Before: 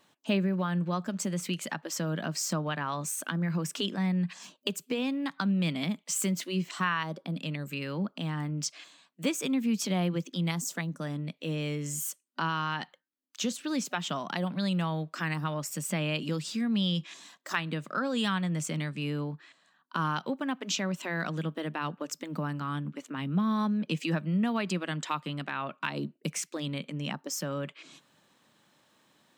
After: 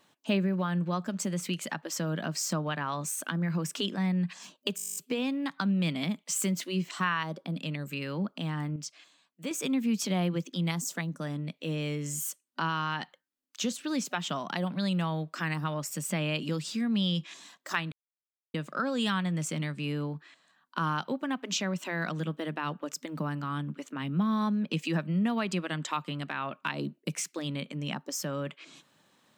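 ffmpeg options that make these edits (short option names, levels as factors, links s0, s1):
-filter_complex "[0:a]asplit=14[s0][s1][s2][s3][s4][s5][s6][s7][s8][s9][s10][s11][s12][s13];[s0]atrim=end=4.782[s14];[s1]atrim=start=4.758:end=4.782[s15];[s2]atrim=start=4.758:end=4.782[s16];[s3]atrim=start=4.758:end=4.782[s17];[s4]atrim=start=4.758:end=4.782[s18];[s5]atrim=start=4.758:end=4.782[s19];[s6]atrim=start=4.758:end=4.782[s20];[s7]atrim=start=4.758:end=4.782[s21];[s8]atrim=start=4.758:end=4.782[s22];[s9]atrim=start=4.758:end=4.782[s23];[s10]atrim=start=4.758:end=8.562[s24];[s11]atrim=start=8.558:end=9.312,asetpts=PTS-STARTPTS,volume=0.447[s25];[s12]atrim=start=9.308:end=17.72,asetpts=PTS-STARTPTS,afade=t=out:st=8.408:d=0.004:c=hsin,apad=pad_dur=0.62[s26];[s13]atrim=start=17.72,asetpts=PTS-STARTPTS,afade=t=in:d=0.004:c=hsin[s27];[s14][s15]acrossfade=d=0.004:c1=hsin:c2=hsin[s28];[s28][s16]acrossfade=d=0.004:c1=hsin:c2=hsin[s29];[s29][s17]acrossfade=d=0.004:c1=hsin:c2=hsin[s30];[s30][s18]acrossfade=d=0.004:c1=hsin:c2=hsin[s31];[s31][s19]acrossfade=d=0.004:c1=hsin:c2=hsin[s32];[s32][s20]acrossfade=d=0.004:c1=hsin:c2=hsin[s33];[s33][s21]acrossfade=d=0.004:c1=hsin:c2=hsin[s34];[s34][s22]acrossfade=d=0.004:c1=hsin:c2=hsin[s35];[s35][s23]acrossfade=d=0.004:c1=hsin:c2=hsin[s36];[s36][s24]acrossfade=d=0.004:c1=hsin:c2=hsin[s37];[s37][s25]acrossfade=d=0.004:c1=hsin:c2=hsin[s38];[s26][s27]concat=n=2:v=0:a=1[s39];[s38][s39]acrossfade=d=0.004:c1=hsin:c2=hsin"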